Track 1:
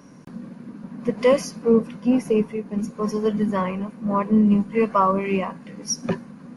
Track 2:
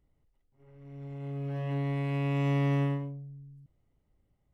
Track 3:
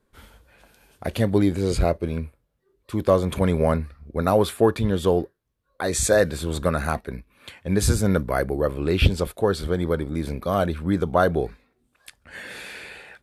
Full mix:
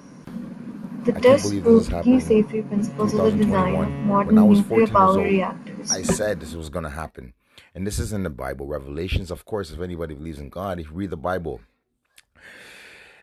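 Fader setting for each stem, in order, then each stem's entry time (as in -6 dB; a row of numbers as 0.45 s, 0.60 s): +3.0 dB, -3.5 dB, -6.0 dB; 0.00 s, 1.25 s, 0.10 s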